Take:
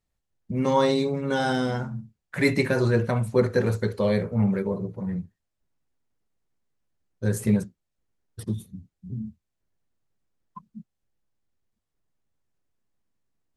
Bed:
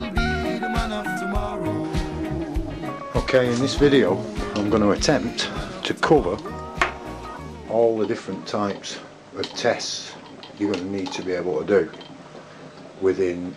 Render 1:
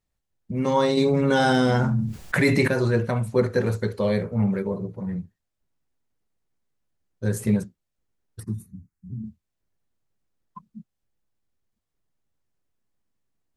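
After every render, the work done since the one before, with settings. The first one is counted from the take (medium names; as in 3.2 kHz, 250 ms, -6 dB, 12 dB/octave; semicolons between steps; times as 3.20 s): 0.97–2.68 s: level flattener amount 70%; 8.40–9.24 s: static phaser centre 1.4 kHz, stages 4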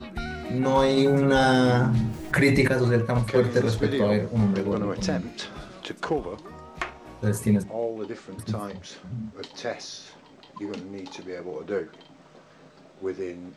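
add bed -10.5 dB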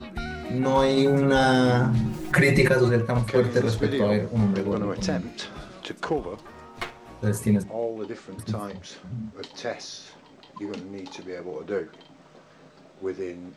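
2.05–2.89 s: comb 5.6 ms, depth 83%; 6.36–7.10 s: comb filter that takes the minimum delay 8.6 ms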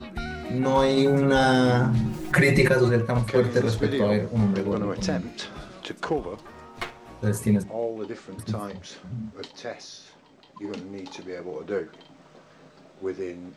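9.51–10.64 s: gain -4 dB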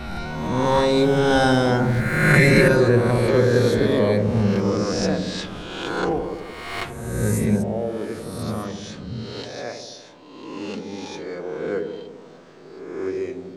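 reverse spectral sustain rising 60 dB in 1.32 s; on a send: feedback echo behind a low-pass 84 ms, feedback 67%, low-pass 660 Hz, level -6 dB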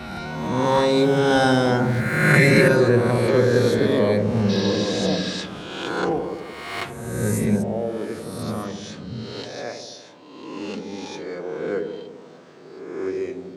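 4.52–5.35 s: spectral replace 1.1–6 kHz after; high-pass 100 Hz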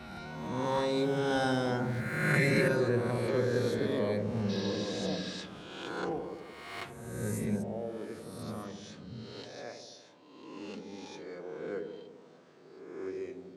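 trim -12 dB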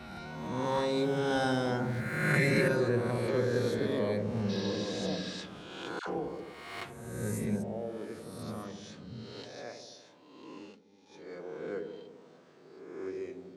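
5.99–6.54 s: phase dispersion lows, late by 86 ms, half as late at 830 Hz; 10.50–11.34 s: dip -17.5 dB, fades 0.28 s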